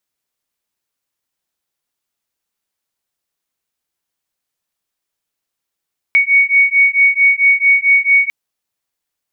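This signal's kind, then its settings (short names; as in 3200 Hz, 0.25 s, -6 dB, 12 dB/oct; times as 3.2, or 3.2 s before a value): beating tones 2230 Hz, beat 4.5 Hz, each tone -11.5 dBFS 2.15 s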